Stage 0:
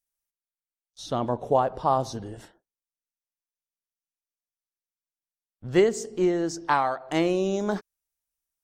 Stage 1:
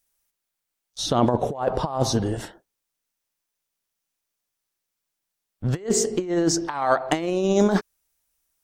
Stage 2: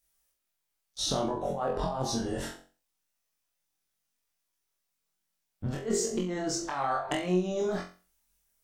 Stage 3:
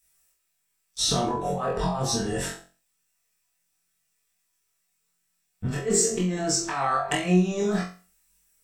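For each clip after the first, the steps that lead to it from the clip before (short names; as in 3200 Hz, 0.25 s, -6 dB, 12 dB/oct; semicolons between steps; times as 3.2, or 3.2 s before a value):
negative-ratio compressor -28 dBFS, ratio -0.5; gain +7.5 dB
chorus voices 6, 0.25 Hz, delay 24 ms, depth 3.5 ms; compressor 12:1, threshold -28 dBFS, peak gain reduction 12.5 dB; flutter echo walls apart 3.8 m, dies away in 0.35 s
reverb, pre-delay 3 ms, DRR 1 dB; gain +6.5 dB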